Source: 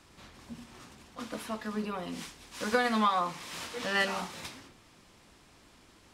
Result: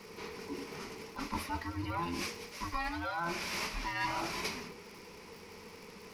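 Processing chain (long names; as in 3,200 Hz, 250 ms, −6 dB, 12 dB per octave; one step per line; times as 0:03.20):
frequency inversion band by band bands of 500 Hz
high-shelf EQ 6,400 Hz −6 dB
reversed playback
downward compressor 8 to 1, threshold −40 dBFS, peak gain reduction 17.5 dB
reversed playback
surface crackle 130 per second −52 dBFS
EQ curve with evenly spaced ripples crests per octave 0.84, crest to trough 9 dB
level +7 dB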